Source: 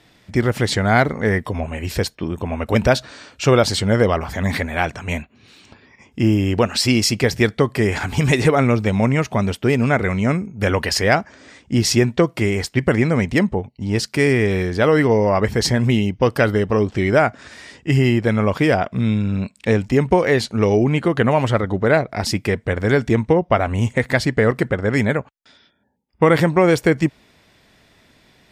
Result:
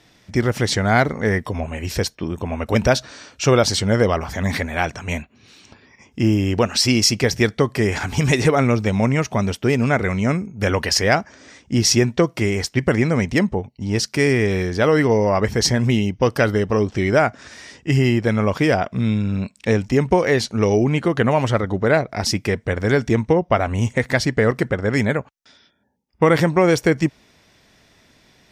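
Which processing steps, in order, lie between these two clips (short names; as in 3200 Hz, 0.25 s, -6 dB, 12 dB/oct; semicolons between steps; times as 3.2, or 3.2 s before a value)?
bell 5800 Hz +7 dB 0.34 oct; gain -1 dB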